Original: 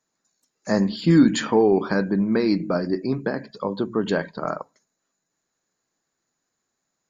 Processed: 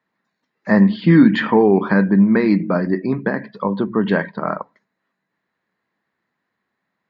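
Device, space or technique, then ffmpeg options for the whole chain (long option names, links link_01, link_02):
guitar cabinet: -af "highpass=86,equalizer=frequency=91:width_type=q:width=4:gain=4,equalizer=frequency=200:width_type=q:width=4:gain=7,equalizer=frequency=1000:width_type=q:width=4:gain=5,equalizer=frequency=1900:width_type=q:width=4:gain=9,lowpass=frequency=3500:width=0.5412,lowpass=frequency=3500:width=1.3066,volume=3dB"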